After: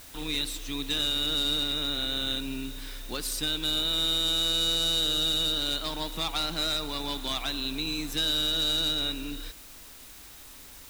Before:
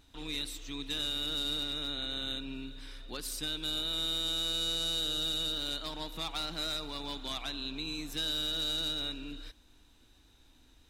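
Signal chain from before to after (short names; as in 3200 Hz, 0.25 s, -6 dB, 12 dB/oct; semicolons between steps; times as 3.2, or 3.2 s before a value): added noise white -55 dBFS; gain +6.5 dB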